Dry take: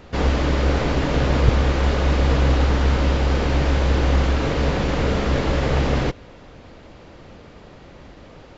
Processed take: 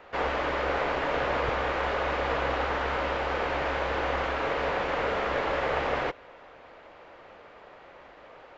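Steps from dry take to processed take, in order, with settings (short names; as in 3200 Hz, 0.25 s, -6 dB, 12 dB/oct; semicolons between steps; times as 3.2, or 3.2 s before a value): three-band isolator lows -21 dB, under 470 Hz, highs -16 dB, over 2800 Hz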